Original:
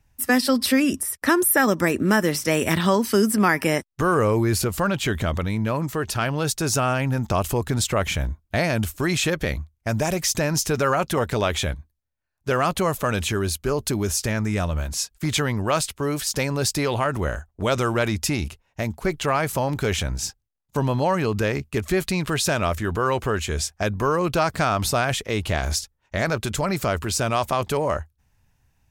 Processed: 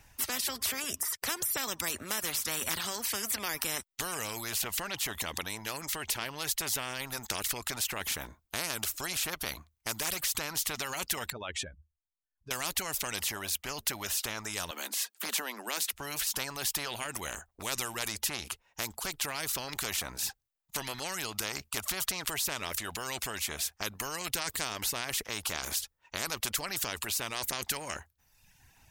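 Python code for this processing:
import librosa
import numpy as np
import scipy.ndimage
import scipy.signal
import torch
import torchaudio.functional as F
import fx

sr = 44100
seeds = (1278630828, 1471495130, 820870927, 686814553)

y = fx.spec_expand(x, sr, power=2.1, at=(11.3, 12.51))
y = fx.steep_highpass(y, sr, hz=210.0, slope=72, at=(14.71, 15.93))
y = fx.dereverb_blind(y, sr, rt60_s=0.74)
y = fx.low_shelf(y, sr, hz=350.0, db=-11.5)
y = fx.spectral_comp(y, sr, ratio=4.0)
y = F.gain(torch.from_numpy(y), -3.5).numpy()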